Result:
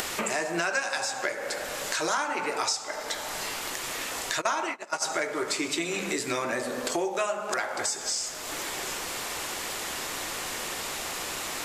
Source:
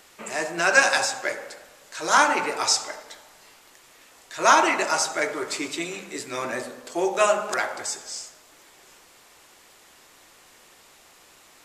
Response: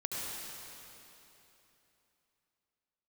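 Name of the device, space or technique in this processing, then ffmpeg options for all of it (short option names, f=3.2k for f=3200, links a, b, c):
upward and downward compression: -filter_complex "[0:a]asplit=3[a][b][c];[a]afade=t=out:st=4.4:d=0.02[d];[b]agate=range=-27dB:threshold=-20dB:ratio=16:detection=peak,afade=t=in:st=4.4:d=0.02,afade=t=out:st=5.02:d=0.02[e];[c]afade=t=in:st=5.02:d=0.02[f];[d][e][f]amix=inputs=3:normalize=0,acompressor=mode=upward:threshold=-26dB:ratio=2.5,acompressor=threshold=-31dB:ratio=8,volume=5.5dB"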